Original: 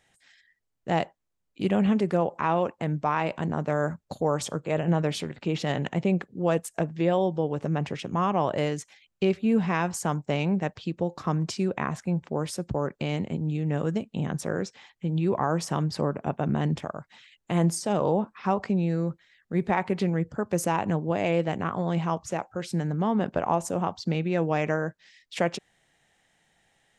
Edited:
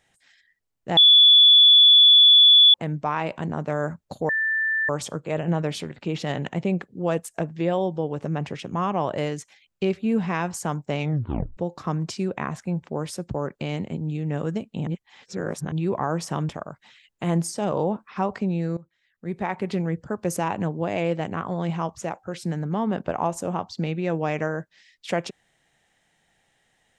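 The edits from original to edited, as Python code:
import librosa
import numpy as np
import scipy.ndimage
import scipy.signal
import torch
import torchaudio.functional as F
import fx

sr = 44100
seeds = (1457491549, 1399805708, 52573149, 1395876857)

y = fx.edit(x, sr, fx.bleep(start_s=0.97, length_s=1.77, hz=3440.0, db=-9.5),
    fx.insert_tone(at_s=4.29, length_s=0.6, hz=1770.0, db=-20.5),
    fx.tape_stop(start_s=10.41, length_s=0.56),
    fx.reverse_span(start_s=14.27, length_s=0.85),
    fx.cut(start_s=15.89, length_s=0.88),
    fx.fade_in_from(start_s=19.05, length_s=0.99, floor_db=-18.5), tone=tone)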